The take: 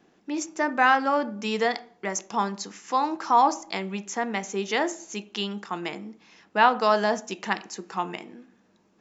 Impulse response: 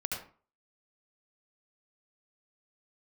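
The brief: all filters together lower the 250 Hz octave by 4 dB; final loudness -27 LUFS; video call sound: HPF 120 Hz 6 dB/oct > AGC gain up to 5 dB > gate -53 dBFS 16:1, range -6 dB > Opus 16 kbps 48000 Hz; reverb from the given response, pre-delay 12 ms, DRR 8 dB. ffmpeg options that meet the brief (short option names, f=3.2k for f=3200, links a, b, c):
-filter_complex "[0:a]equalizer=f=250:t=o:g=-4,asplit=2[a][b];[1:a]atrim=start_sample=2205,adelay=12[c];[b][c]afir=irnorm=-1:irlink=0,volume=-11.5dB[d];[a][d]amix=inputs=2:normalize=0,highpass=f=120:p=1,dynaudnorm=m=5dB,agate=range=-6dB:threshold=-53dB:ratio=16,volume=-0.5dB" -ar 48000 -c:a libopus -b:a 16k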